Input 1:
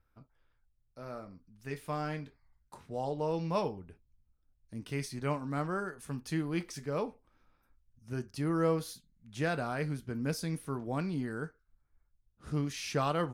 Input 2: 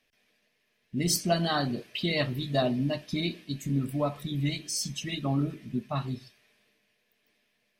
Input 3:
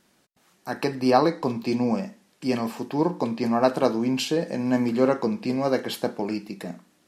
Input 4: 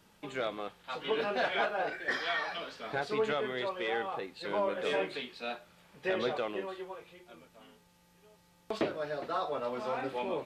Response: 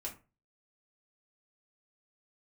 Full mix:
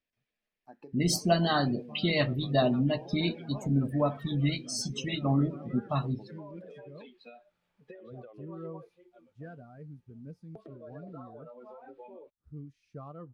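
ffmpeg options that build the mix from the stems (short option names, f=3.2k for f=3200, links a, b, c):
-filter_complex "[0:a]lowshelf=f=180:g=7.5,volume=-14.5dB[a];[1:a]volume=1.5dB[b];[2:a]volume=-15.5dB[c];[3:a]acompressor=threshold=-39dB:ratio=6,adelay=1850,volume=0.5dB[d];[c][d]amix=inputs=2:normalize=0,acompressor=threshold=-43dB:ratio=10,volume=0dB[e];[a][b][e]amix=inputs=3:normalize=0,afftdn=nr=19:nf=-41,highshelf=f=6.8k:g=-9.5"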